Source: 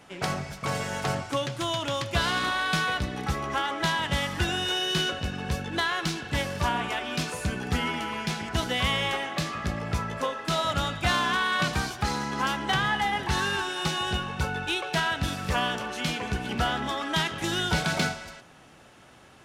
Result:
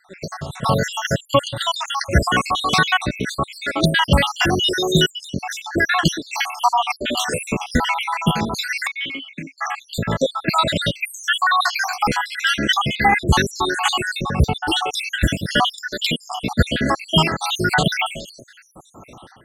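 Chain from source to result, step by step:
time-frequency cells dropped at random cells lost 74%
0:08.87–0:09.58: formant filter i
automatic gain control gain up to 12 dB
level +2.5 dB

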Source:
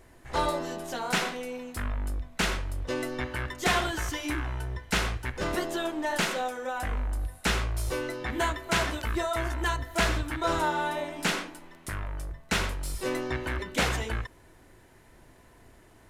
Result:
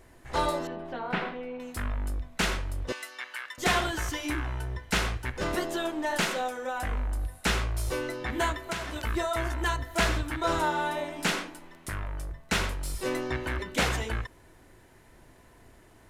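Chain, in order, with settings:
0:00.67–0:01.60: high-frequency loss of the air 430 metres
0:02.92–0:03.58: high-pass filter 1,400 Hz 12 dB per octave
0:08.54–0:08.96: downward compressor 12 to 1, threshold −30 dBFS, peak gain reduction 10 dB

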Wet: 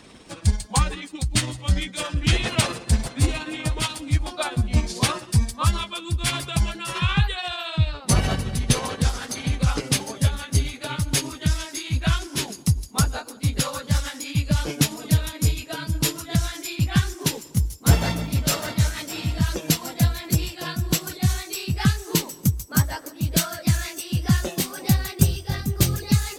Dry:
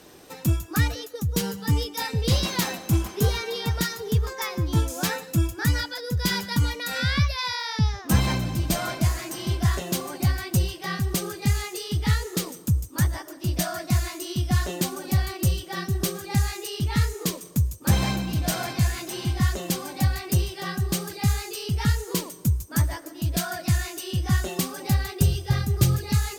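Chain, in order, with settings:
pitch glide at a constant tempo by −8 semitones ending unshifted
harmonic and percussive parts rebalanced percussive +8 dB
level −1 dB

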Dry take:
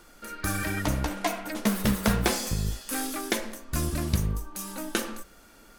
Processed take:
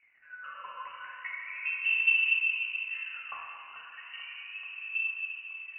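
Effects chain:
spectral tilt −4.5 dB per octave
surface crackle 120 per second −29 dBFS
LFO wah 0.36 Hz 240–1,900 Hz, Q 14
delay with a high-pass on its return 437 ms, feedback 72%, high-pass 1,700 Hz, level −12.5 dB
dense smooth reverb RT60 3.5 s, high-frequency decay 0.35×, DRR −2.5 dB
voice inversion scrambler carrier 2,900 Hz

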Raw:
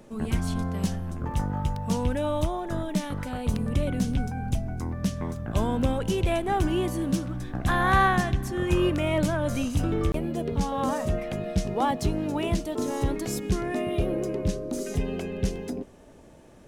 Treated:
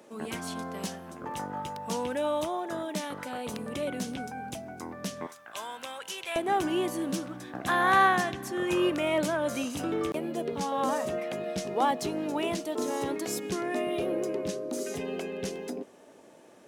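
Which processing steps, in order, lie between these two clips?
high-pass filter 340 Hz 12 dB per octave, from 0:05.27 1,200 Hz, from 0:06.36 300 Hz

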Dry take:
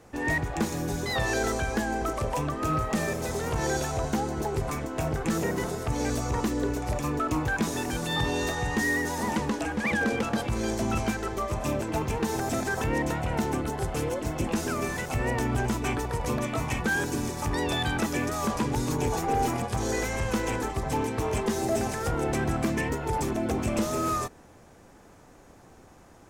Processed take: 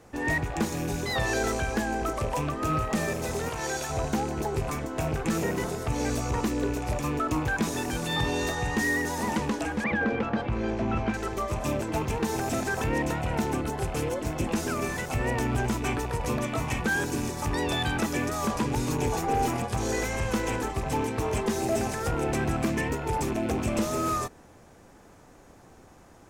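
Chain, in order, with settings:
loose part that buzzes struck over −32 dBFS, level −34 dBFS
0:03.49–0:03.90: low-shelf EQ 440 Hz −10 dB
0:09.84–0:11.14: low-pass filter 2,500 Hz 12 dB per octave

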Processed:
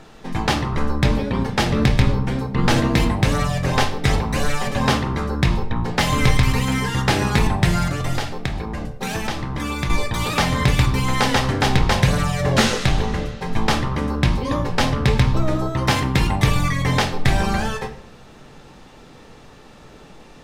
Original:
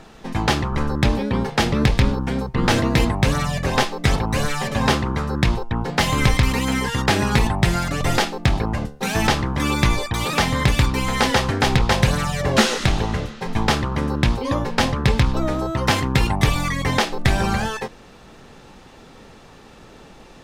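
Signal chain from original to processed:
0:07.89–0:09.90: downward compressor 4 to 1, threshold −22 dBFS, peak gain reduction 9 dB
convolution reverb RT60 0.70 s, pre-delay 7 ms, DRR 7.5 dB
level −1 dB

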